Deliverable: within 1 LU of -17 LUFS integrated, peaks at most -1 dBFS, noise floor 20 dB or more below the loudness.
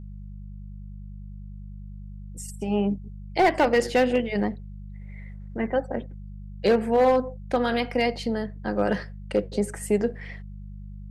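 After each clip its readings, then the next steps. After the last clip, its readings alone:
clipped 0.5%; flat tops at -13.0 dBFS; hum 50 Hz; harmonics up to 200 Hz; hum level -36 dBFS; loudness -25.0 LUFS; peak -13.0 dBFS; loudness target -17.0 LUFS
-> clip repair -13 dBFS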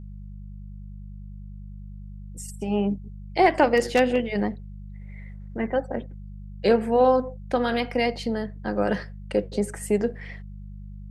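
clipped 0.0%; hum 50 Hz; harmonics up to 200 Hz; hum level -36 dBFS
-> de-hum 50 Hz, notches 4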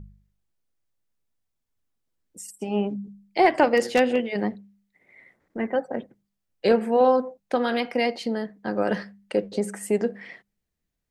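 hum none; loudness -24.5 LUFS; peak -5.0 dBFS; loudness target -17.0 LUFS
-> gain +7.5 dB; limiter -1 dBFS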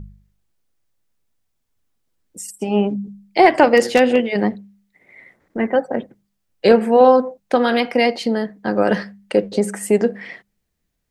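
loudness -17.5 LUFS; peak -1.0 dBFS; noise floor -73 dBFS

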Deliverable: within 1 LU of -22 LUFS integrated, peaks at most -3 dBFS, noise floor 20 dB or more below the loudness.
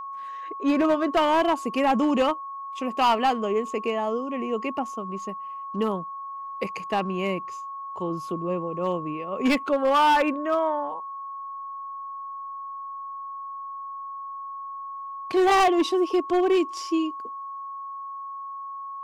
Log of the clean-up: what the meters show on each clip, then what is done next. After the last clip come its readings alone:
clipped 1.4%; flat tops at -16.0 dBFS; steady tone 1100 Hz; tone level -33 dBFS; loudness -26.5 LUFS; peak -16.0 dBFS; loudness target -22.0 LUFS
-> clip repair -16 dBFS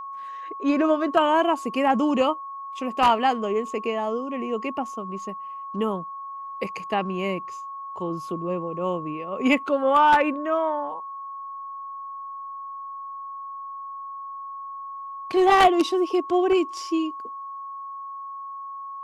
clipped 0.0%; steady tone 1100 Hz; tone level -33 dBFS
-> notch 1100 Hz, Q 30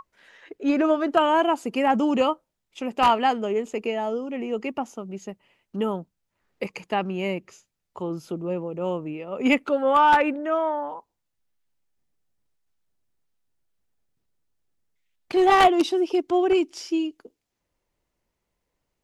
steady tone none; loudness -23.5 LUFS; peak -6.0 dBFS; loudness target -22.0 LUFS
-> gain +1.5 dB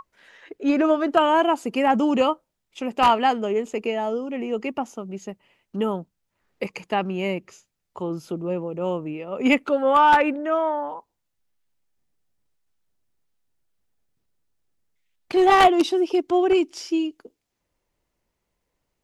loudness -22.0 LUFS; peak -4.5 dBFS; noise floor -78 dBFS

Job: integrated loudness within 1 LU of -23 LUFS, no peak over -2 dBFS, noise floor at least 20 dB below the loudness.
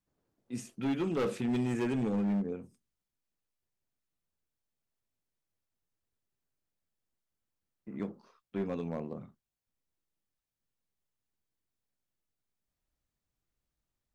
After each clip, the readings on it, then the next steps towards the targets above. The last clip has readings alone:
clipped 1.4%; flat tops at -27.0 dBFS; loudness -34.5 LUFS; peak -27.0 dBFS; loudness target -23.0 LUFS
-> clip repair -27 dBFS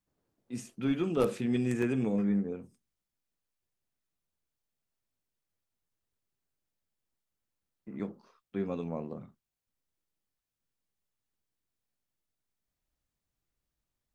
clipped 0.0%; loudness -32.5 LUFS; peak -18.0 dBFS; loudness target -23.0 LUFS
-> gain +9.5 dB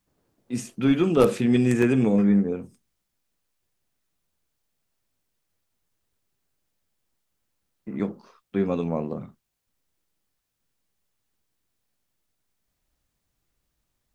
loudness -23.0 LUFS; peak -8.5 dBFS; noise floor -78 dBFS

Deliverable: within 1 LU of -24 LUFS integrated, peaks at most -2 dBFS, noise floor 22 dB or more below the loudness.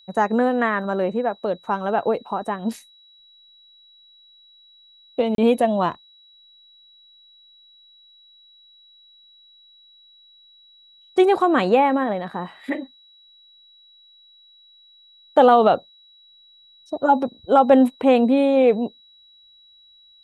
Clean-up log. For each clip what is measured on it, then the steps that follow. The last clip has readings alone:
dropouts 1; longest dropout 32 ms; steady tone 3900 Hz; tone level -50 dBFS; loudness -19.5 LUFS; peak -3.0 dBFS; loudness target -24.0 LUFS
-> interpolate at 5.35, 32 ms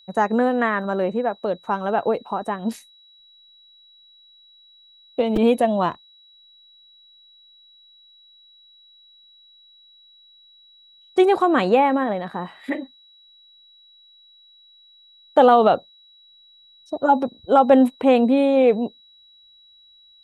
dropouts 0; steady tone 3900 Hz; tone level -50 dBFS
-> notch 3900 Hz, Q 30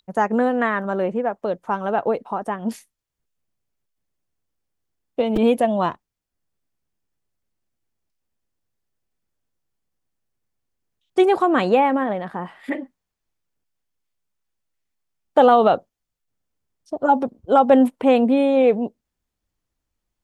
steady tone none; loudness -19.5 LUFS; peak -3.0 dBFS; loudness target -24.0 LUFS
-> gain -4.5 dB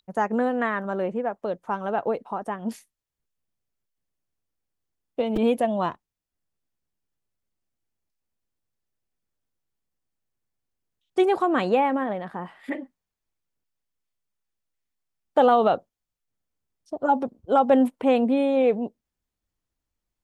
loudness -24.0 LUFS; peak -7.5 dBFS; noise floor -86 dBFS

